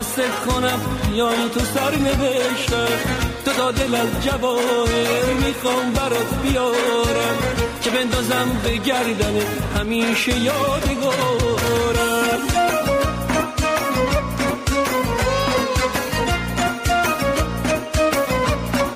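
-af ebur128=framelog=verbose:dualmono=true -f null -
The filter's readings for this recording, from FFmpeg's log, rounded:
Integrated loudness:
  I:         -16.4 LUFS
  Threshold: -26.4 LUFS
Loudness range:
  LRA:         0.9 LU
  Threshold: -36.4 LUFS
  LRA low:   -16.8 LUFS
  LRA high:  -15.9 LUFS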